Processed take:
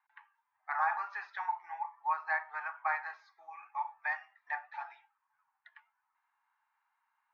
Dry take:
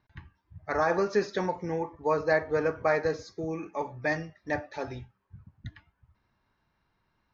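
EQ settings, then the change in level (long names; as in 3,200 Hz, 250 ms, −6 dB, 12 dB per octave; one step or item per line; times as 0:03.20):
elliptic high-pass filter 820 Hz, stop band 40 dB
flat-topped band-pass 1,300 Hz, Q 0.57
spectral tilt −3.5 dB per octave
0.0 dB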